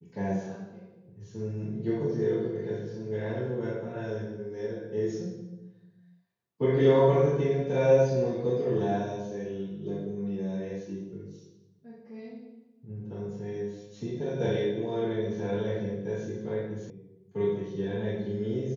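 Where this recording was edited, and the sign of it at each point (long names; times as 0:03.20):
0:16.90: cut off before it has died away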